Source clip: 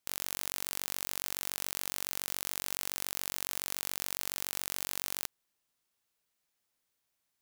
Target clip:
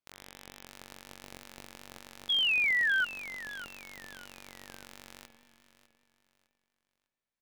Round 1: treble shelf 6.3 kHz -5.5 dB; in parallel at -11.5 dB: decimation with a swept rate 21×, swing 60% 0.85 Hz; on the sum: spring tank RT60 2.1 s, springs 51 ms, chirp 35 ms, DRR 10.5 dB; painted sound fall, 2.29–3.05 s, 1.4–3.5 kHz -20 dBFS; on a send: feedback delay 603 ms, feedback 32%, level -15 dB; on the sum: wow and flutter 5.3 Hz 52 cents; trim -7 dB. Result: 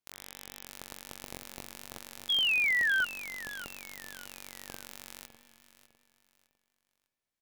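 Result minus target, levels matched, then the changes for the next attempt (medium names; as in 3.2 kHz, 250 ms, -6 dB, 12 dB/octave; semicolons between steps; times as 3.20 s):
8 kHz band +6.5 dB
change: treble shelf 6.3 kHz -16 dB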